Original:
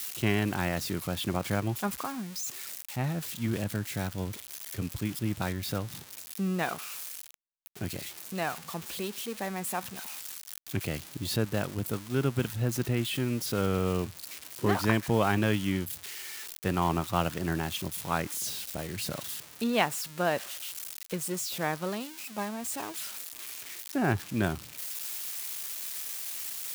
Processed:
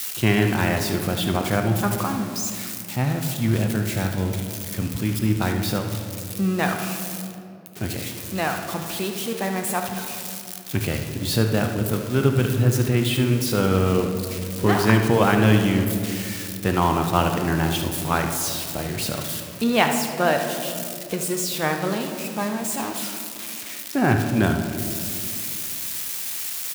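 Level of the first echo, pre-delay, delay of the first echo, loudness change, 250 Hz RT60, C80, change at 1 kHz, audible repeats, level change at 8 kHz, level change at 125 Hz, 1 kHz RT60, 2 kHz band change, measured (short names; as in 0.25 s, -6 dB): -11.0 dB, 8 ms, 74 ms, +9.0 dB, 3.0 s, 7.5 dB, +8.5 dB, 1, +7.5 dB, +10.0 dB, 2.1 s, +8.5 dB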